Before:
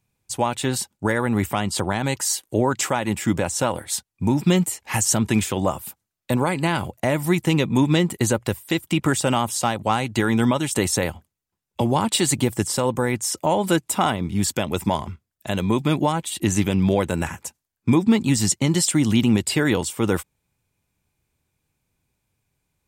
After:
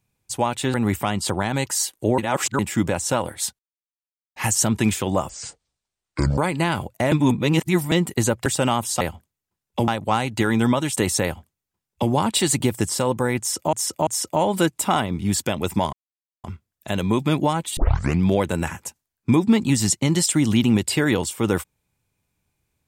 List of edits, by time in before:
0.74–1.24 s: delete
2.68–3.09 s: reverse
4.09–4.86 s: mute
5.79–6.41 s: speed 57%
7.15–7.95 s: reverse
8.49–9.11 s: delete
11.02–11.89 s: copy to 9.66 s
13.17–13.51 s: loop, 3 plays
15.03 s: insert silence 0.51 s
16.36 s: tape start 0.44 s

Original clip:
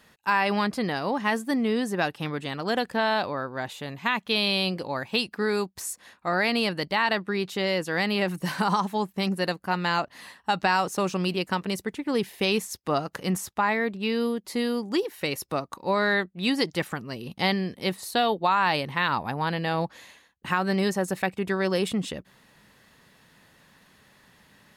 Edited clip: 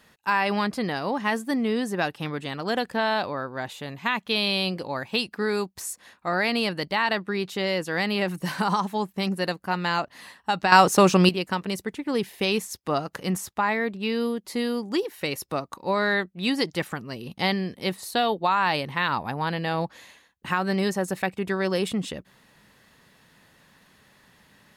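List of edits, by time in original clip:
10.72–11.29 s: gain +9.5 dB

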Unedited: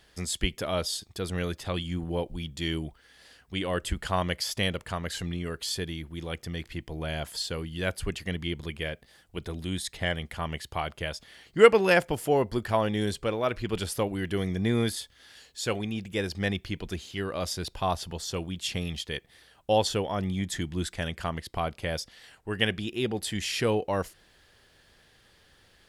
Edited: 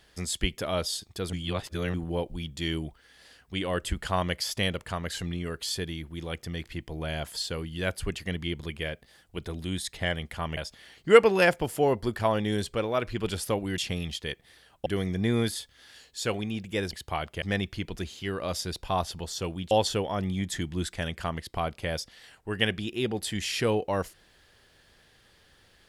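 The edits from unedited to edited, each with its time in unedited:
1.33–1.94 s: reverse
10.57–11.06 s: move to 16.34 s
18.63–19.71 s: move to 14.27 s

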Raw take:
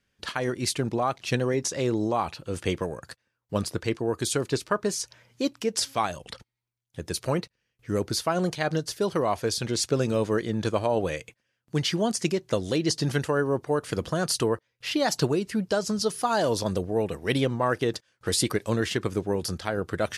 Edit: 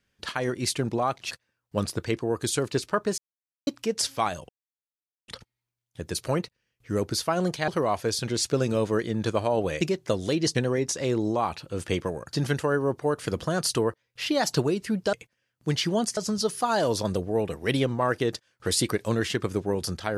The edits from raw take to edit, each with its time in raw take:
1.31–3.09 s: move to 12.98 s
4.96–5.45 s: mute
6.27 s: insert silence 0.79 s
8.67–9.07 s: delete
11.20–12.24 s: move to 15.78 s

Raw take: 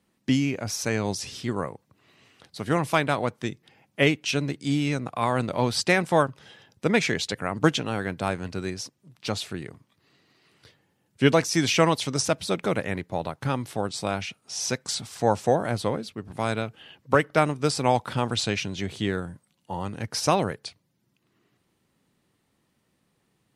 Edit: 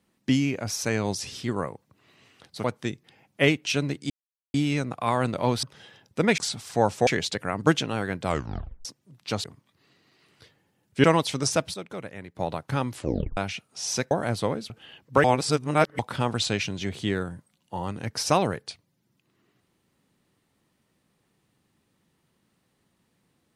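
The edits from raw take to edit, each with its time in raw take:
2.64–3.23 s: delete
4.69 s: insert silence 0.44 s
5.78–6.29 s: delete
8.21 s: tape stop 0.61 s
9.41–9.67 s: delete
11.27–11.77 s: delete
12.47–13.08 s: gain -11 dB
13.67 s: tape stop 0.43 s
14.84–15.53 s: move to 7.04 s
16.12–16.67 s: delete
17.21–17.96 s: reverse

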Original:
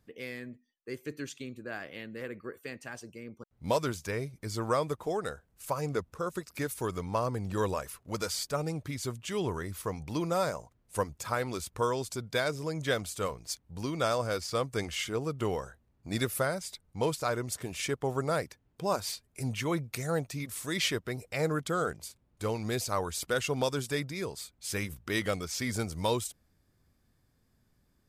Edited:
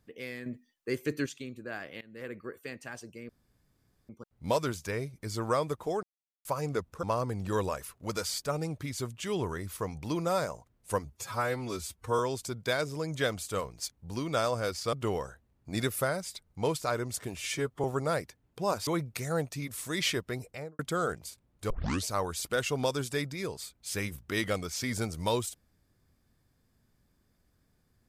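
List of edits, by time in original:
0.46–1.26 s: gain +7 dB
2.01–2.30 s: fade in, from -20 dB
3.29 s: insert room tone 0.80 s
5.23–5.65 s: mute
6.23–7.08 s: delete
11.10–11.86 s: stretch 1.5×
14.60–15.31 s: delete
17.74–18.06 s: stretch 1.5×
19.09–19.65 s: delete
21.17–21.57 s: studio fade out
22.48 s: tape start 0.37 s

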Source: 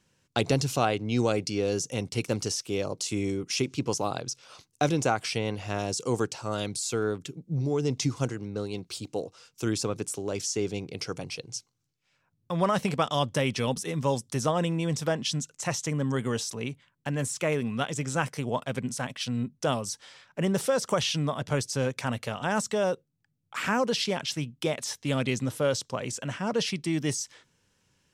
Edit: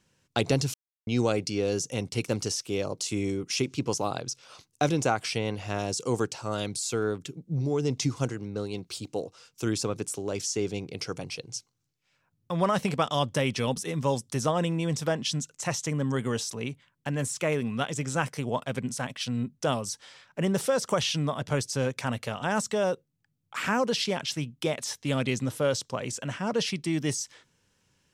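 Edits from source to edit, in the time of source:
0.74–1.07 s: mute

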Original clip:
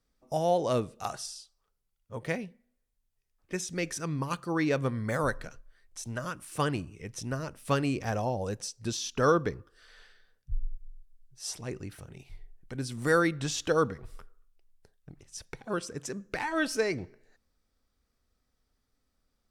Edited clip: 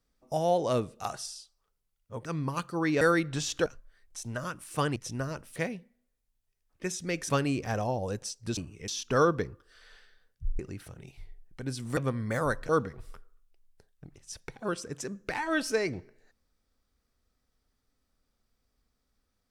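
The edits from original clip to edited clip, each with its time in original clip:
2.25–3.99 s: move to 7.68 s
4.75–5.47 s: swap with 13.09–13.74 s
6.77–7.08 s: move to 8.95 s
10.66–11.71 s: delete

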